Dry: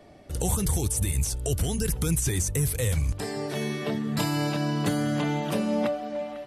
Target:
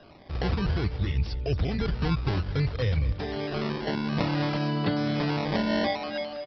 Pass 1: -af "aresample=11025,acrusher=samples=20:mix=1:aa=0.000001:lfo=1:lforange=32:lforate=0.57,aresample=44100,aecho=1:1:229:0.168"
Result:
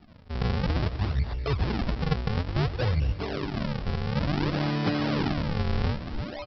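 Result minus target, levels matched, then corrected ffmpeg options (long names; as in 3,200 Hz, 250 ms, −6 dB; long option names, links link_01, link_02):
sample-and-hold swept by an LFO: distortion +10 dB
-af "aresample=11025,acrusher=samples=5:mix=1:aa=0.000001:lfo=1:lforange=8:lforate=0.57,aresample=44100,aecho=1:1:229:0.168"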